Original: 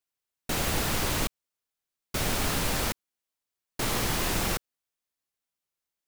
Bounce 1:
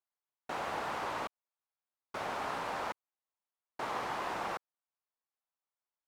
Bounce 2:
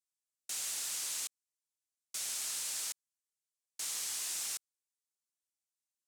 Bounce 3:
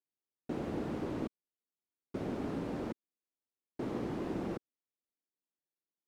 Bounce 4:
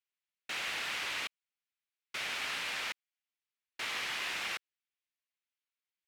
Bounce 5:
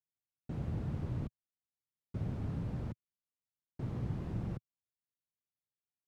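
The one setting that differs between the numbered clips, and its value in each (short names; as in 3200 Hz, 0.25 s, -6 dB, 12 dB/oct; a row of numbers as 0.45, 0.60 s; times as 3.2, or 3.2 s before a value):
band-pass, frequency: 920, 7800, 300, 2400, 120 Hz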